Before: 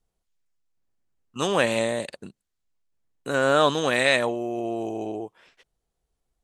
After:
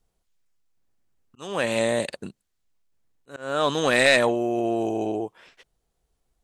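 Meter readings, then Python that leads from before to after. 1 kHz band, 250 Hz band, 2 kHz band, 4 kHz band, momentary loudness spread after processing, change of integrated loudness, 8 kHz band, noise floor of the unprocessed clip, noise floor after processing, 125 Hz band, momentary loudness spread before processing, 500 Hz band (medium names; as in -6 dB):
-1.5 dB, +1.5 dB, +1.0 dB, +0.5 dB, 20 LU, +0.5 dB, +1.0 dB, -81 dBFS, -77 dBFS, -1.0 dB, 17 LU, +0.5 dB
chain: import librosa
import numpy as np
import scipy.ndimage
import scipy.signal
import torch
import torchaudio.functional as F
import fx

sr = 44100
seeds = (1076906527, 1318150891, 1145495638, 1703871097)

y = fx.auto_swell(x, sr, attack_ms=638.0)
y = 10.0 ** (-11.5 / 20.0) * np.tanh(y / 10.0 ** (-11.5 / 20.0))
y = F.gain(torch.from_numpy(y), 4.5).numpy()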